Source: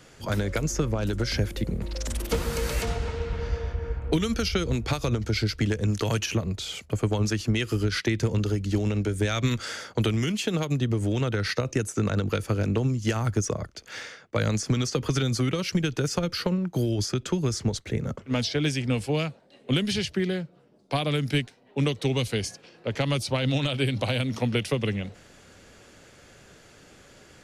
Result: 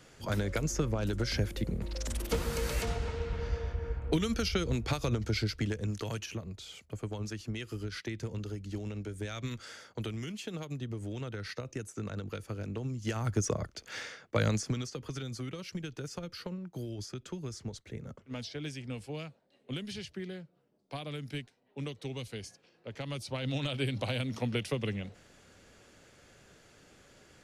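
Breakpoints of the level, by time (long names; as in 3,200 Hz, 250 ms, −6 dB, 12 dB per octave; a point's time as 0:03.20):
0:05.31 −5 dB
0:06.38 −13 dB
0:12.75 −13 dB
0:13.50 −3 dB
0:14.48 −3 dB
0:14.95 −14 dB
0:22.97 −14 dB
0:23.71 −7 dB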